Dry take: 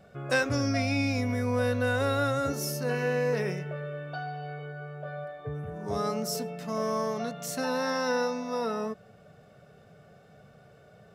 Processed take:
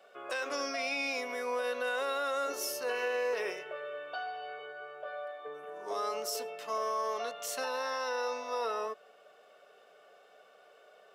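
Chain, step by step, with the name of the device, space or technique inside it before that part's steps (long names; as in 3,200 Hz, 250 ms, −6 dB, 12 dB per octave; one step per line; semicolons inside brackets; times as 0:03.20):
laptop speaker (high-pass filter 400 Hz 24 dB per octave; parametric band 1,100 Hz +5.5 dB 0.33 octaves; parametric band 3,000 Hz +7 dB 0.51 octaves; brickwall limiter −23 dBFS, peak gain reduction 10.5 dB)
level −2 dB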